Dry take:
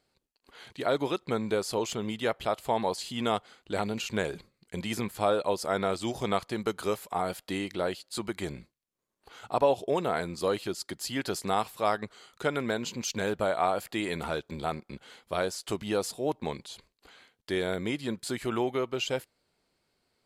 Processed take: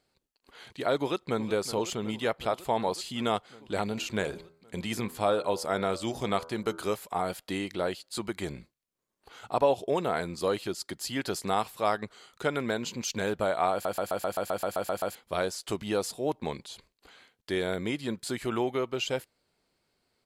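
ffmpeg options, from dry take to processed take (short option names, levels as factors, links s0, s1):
-filter_complex "[0:a]asplit=2[s0][s1];[s1]afade=t=in:st=0.96:d=0.01,afade=t=out:st=1.44:d=0.01,aecho=0:1:370|740|1110|1480|1850|2220|2590|2960|3330|3700|4070|4440:0.199526|0.159621|0.127697|0.102157|0.0817259|0.0653808|0.0523046|0.0418437|0.0334749|0.02678|0.021424|0.0171392[s2];[s0][s2]amix=inputs=2:normalize=0,asettb=1/sr,asplit=3[s3][s4][s5];[s3]atrim=end=3.894[s6];[s4]atrim=start=3.89:end=6.9,asetpts=PTS-STARTPTS,afade=t=in:d=0.004:c=qsin,afade=t=out:st=3.006:d=0.004:c=qsin,bandreject=f=82.01:t=h:w=4,bandreject=f=164.02:t=h:w=4,bandreject=f=246.03:t=h:w=4,bandreject=f=328.04:t=h:w=4,bandreject=f=410.05:t=h:w=4,bandreject=f=492.06:t=h:w=4,bandreject=f=574.07:t=h:w=4,bandreject=f=656.08:t=h:w=4,bandreject=f=738.09:t=h:w=4,bandreject=f=820.1:t=h:w=4,bandreject=f=902.11:t=h:w=4,bandreject=f=984.12:t=h:w=4,bandreject=f=1066.13:t=h:w=4,bandreject=f=1148.14:t=h:w=4,bandreject=f=1230.15:t=h:w=4,bandreject=f=1312.16:t=h:w=4,bandreject=f=1394.17:t=h:w=4,bandreject=f=1476.18:t=h:w=4,bandreject=f=1558.19:t=h:w=4[s7];[s5]atrim=start=6.896[s8];[s6][s7]acrossfade=d=0.004:c1=hsin:c2=qsin[s9];[s9][s8]acrossfade=d=0.004:c1=qsin:c2=hsin,asplit=12[s10][s11][s12][s13][s14][s15][s16][s17][s18][s19][s20][s21];[s10]atrim=end=13.852[s22];[s11]atrim=start=13.718:end=13.852[s23];[s12]atrim=start=13.718:end=13.852[s24];[s13]atrim=start=13.718:end=13.852[s25];[s14]atrim=start=13.718:end=13.852[s26];[s15]atrim=start=13.718:end=13.852[s27];[s16]atrim=start=13.718:end=13.852[s28];[s17]atrim=start=13.718:end=13.852[s29];[s18]atrim=start=13.718:end=13.852[s30];[s19]atrim=start=13.718:end=13.852[s31];[s20]atrim=start=13.718:end=13.852[s32];[s21]atrim=start=15.148[s33];[s22][s23]acrossfade=d=0.004:c1=hsin:c2=hsin[s34];[s34][s24]acrossfade=d=0.004:c1=hsin:c2=hsin[s35];[s35][s25]acrossfade=d=0.004:c1=hsin:c2=hsin[s36];[s36][s26]acrossfade=d=0.004:c1=hsin:c2=hsin[s37];[s37][s27]acrossfade=d=0.004:c1=hsin:c2=hsin[s38];[s38][s28]acrossfade=d=0.004:c1=hsin:c2=hsin[s39];[s39][s29]acrossfade=d=0.004:c1=hsin:c2=hsin[s40];[s40][s30]acrossfade=d=0.004:c1=hsin:c2=hsin[s41];[s41][s31]acrossfade=d=0.004:c1=hsin:c2=hsin[s42];[s42][s32]acrossfade=d=0.004:c1=hsin:c2=hsin[s43];[s43][s33]acrossfade=d=0.004:c1=hsin:c2=hsin"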